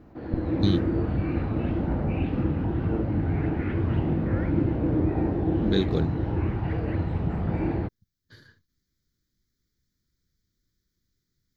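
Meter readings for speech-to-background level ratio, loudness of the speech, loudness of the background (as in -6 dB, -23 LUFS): -2.0 dB, -29.0 LUFS, -27.0 LUFS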